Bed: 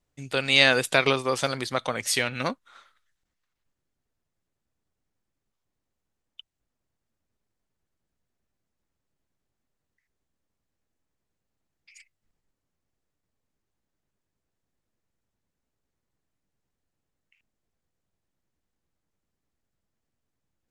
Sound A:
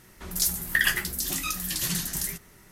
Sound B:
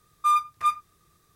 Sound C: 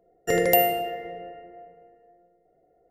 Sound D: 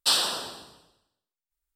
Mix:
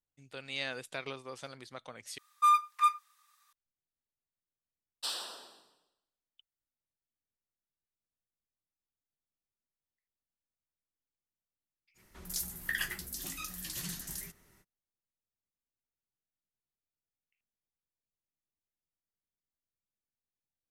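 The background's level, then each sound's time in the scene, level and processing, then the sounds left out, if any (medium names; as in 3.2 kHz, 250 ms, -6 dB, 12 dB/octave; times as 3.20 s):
bed -19 dB
2.18 s: replace with B -2 dB + Chebyshev high-pass 910 Hz, order 4
4.97 s: add D -14.5 dB + high-pass 290 Hz
11.94 s: add A -11.5 dB, fades 0.05 s
not used: C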